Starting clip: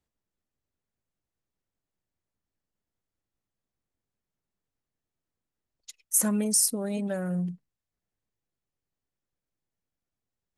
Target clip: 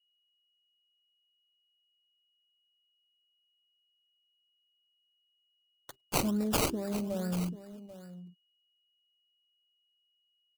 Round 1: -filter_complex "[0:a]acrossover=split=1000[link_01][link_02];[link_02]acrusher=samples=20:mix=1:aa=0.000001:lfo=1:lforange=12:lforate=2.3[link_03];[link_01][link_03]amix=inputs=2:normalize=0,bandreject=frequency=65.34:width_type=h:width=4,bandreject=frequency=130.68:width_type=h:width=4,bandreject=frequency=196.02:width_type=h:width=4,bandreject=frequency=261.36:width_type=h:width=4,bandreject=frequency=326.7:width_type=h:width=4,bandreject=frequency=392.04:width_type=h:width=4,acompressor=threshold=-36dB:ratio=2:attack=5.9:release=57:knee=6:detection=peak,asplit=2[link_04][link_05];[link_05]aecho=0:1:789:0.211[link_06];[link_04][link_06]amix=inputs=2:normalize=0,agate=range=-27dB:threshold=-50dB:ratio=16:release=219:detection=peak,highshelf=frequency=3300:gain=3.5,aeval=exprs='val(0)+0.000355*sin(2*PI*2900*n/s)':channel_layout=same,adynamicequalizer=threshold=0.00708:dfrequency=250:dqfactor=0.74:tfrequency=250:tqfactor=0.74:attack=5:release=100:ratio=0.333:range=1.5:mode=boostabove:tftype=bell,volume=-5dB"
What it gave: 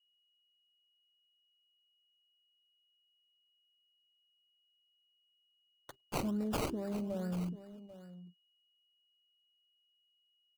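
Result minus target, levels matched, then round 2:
8,000 Hz band −6.5 dB; downward compressor: peak gain reduction +5 dB
-filter_complex "[0:a]acrossover=split=1000[link_01][link_02];[link_02]acrusher=samples=20:mix=1:aa=0.000001:lfo=1:lforange=12:lforate=2.3[link_03];[link_01][link_03]amix=inputs=2:normalize=0,bandreject=frequency=65.34:width_type=h:width=4,bandreject=frequency=130.68:width_type=h:width=4,bandreject=frequency=196.02:width_type=h:width=4,bandreject=frequency=261.36:width_type=h:width=4,bandreject=frequency=326.7:width_type=h:width=4,bandreject=frequency=392.04:width_type=h:width=4,acompressor=threshold=-26dB:ratio=2:attack=5.9:release=57:knee=6:detection=peak,asplit=2[link_04][link_05];[link_05]aecho=0:1:789:0.211[link_06];[link_04][link_06]amix=inputs=2:normalize=0,agate=range=-27dB:threshold=-50dB:ratio=16:release=219:detection=peak,highshelf=frequency=3300:gain=12.5,aeval=exprs='val(0)+0.000355*sin(2*PI*2900*n/s)':channel_layout=same,adynamicequalizer=threshold=0.00708:dfrequency=250:dqfactor=0.74:tfrequency=250:tqfactor=0.74:attack=5:release=100:ratio=0.333:range=1.5:mode=boostabove:tftype=bell,volume=-5dB"

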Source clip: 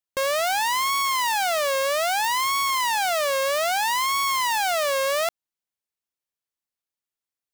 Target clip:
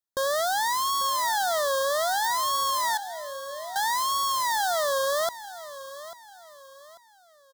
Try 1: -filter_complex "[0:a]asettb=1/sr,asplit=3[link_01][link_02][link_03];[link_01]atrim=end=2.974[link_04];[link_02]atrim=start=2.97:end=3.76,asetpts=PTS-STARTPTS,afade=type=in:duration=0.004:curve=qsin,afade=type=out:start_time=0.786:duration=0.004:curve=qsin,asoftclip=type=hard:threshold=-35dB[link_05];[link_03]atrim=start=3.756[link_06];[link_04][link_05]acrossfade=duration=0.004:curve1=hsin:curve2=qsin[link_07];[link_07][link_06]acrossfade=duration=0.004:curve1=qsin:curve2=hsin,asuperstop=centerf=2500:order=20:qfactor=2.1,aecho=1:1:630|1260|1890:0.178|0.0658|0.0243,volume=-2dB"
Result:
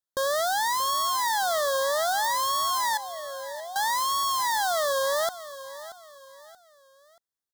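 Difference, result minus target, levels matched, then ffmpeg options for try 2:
echo 212 ms early
-filter_complex "[0:a]asettb=1/sr,asplit=3[link_01][link_02][link_03];[link_01]atrim=end=2.974[link_04];[link_02]atrim=start=2.97:end=3.76,asetpts=PTS-STARTPTS,afade=type=in:duration=0.004:curve=qsin,afade=type=out:start_time=0.786:duration=0.004:curve=qsin,asoftclip=type=hard:threshold=-35dB[link_05];[link_03]atrim=start=3.756[link_06];[link_04][link_05]acrossfade=duration=0.004:curve1=hsin:curve2=qsin[link_07];[link_07][link_06]acrossfade=duration=0.004:curve1=qsin:curve2=hsin,asuperstop=centerf=2500:order=20:qfactor=2.1,aecho=1:1:842|1684|2526:0.178|0.0658|0.0243,volume=-2dB"

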